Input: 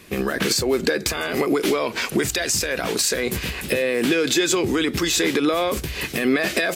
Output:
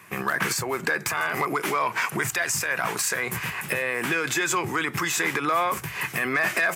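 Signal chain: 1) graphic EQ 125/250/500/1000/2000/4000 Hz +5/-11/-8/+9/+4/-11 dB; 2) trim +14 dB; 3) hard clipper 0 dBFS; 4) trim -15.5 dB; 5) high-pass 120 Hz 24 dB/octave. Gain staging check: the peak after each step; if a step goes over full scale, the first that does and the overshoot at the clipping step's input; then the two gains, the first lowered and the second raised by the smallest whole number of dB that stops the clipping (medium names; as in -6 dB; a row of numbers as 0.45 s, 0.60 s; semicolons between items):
-7.0 dBFS, +7.0 dBFS, 0.0 dBFS, -15.5 dBFS, -12.5 dBFS; step 2, 7.0 dB; step 2 +7 dB, step 4 -8.5 dB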